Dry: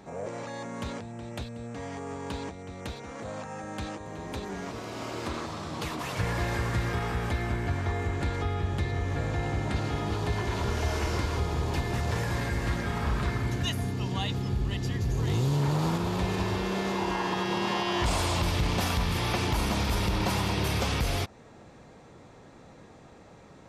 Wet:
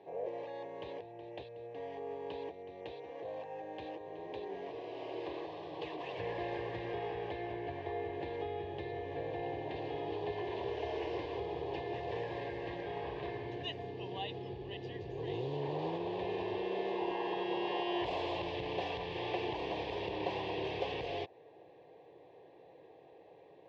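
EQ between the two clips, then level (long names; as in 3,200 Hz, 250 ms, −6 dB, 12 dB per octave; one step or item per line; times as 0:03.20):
loudspeaker in its box 350–2,500 Hz, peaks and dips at 600 Hz −6 dB, 910 Hz −4 dB, 1,400 Hz −9 dB, 2,200 Hz −9 dB
parametric band 860 Hz −3.5 dB 3 octaves
phaser with its sweep stopped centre 550 Hz, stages 4
+5.0 dB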